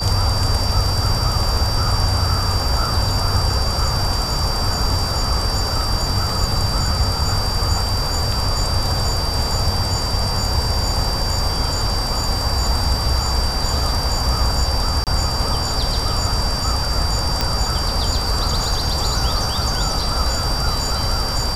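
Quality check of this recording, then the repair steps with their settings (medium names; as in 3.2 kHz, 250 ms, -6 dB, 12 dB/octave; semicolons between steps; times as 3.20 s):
whine 4.7 kHz -24 dBFS
15.04–15.07 s: dropout 28 ms
17.41 s: pop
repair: de-click; band-stop 4.7 kHz, Q 30; interpolate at 15.04 s, 28 ms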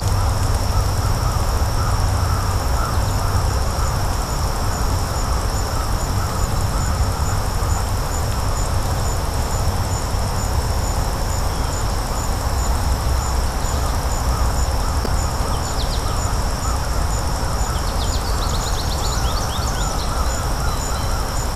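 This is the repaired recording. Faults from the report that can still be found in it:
nothing left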